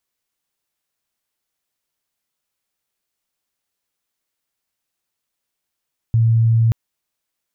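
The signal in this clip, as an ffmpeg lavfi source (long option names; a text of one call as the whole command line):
ffmpeg -f lavfi -i "sine=frequency=114:duration=0.58:sample_rate=44100,volume=7.06dB" out.wav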